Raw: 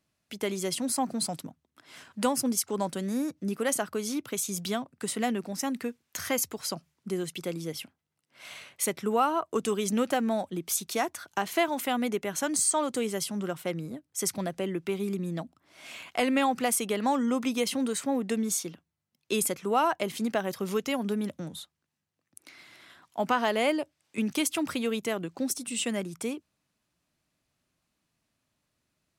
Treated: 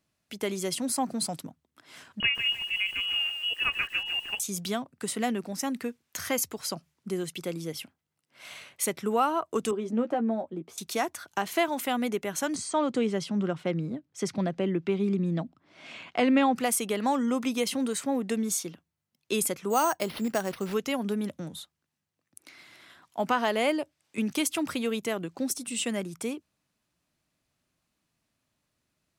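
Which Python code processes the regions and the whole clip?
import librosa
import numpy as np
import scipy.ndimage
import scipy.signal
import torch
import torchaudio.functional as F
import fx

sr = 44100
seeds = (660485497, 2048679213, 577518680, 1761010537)

y = fx.chain(x, sr, fx.quant_float(bits=4),
    fx.freq_invert(carrier_hz=3100),
    fx.echo_crushed(ms=150, feedback_pct=35, bits=8, wet_db=-7.0), at=(2.2, 4.4))
y = fx.chain(y, sr, fx.bandpass_q(hz=380.0, q=0.69),
    fx.doubler(ms=13.0, db=-7.0), at=(9.71, 10.78))
y = fx.chain(y, sr, fx.bandpass_edges(low_hz=130.0, high_hz=4500.0),
    fx.low_shelf(hz=260.0, db=9.5), at=(12.55, 16.56))
y = fx.chain(y, sr, fx.high_shelf(hz=12000.0, db=-4.0),
    fx.resample_bad(factor=6, down='none', up='hold'), at=(19.7, 20.74))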